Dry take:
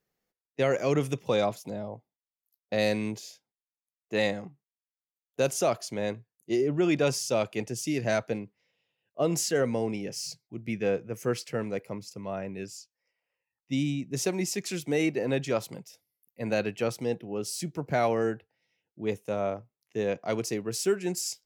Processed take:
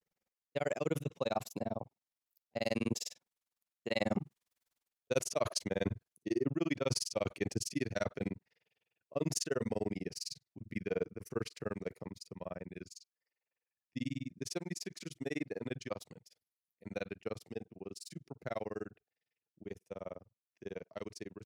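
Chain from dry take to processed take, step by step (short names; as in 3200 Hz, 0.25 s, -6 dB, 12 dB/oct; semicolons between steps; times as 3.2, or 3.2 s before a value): Doppler pass-by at 4.72, 23 m/s, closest 13 m; reverse; compressor 12:1, threshold -44 dBFS, peak gain reduction 22 dB; reverse; grains 42 ms, grains 20/s, spray 13 ms, pitch spread up and down by 0 st; gain +17.5 dB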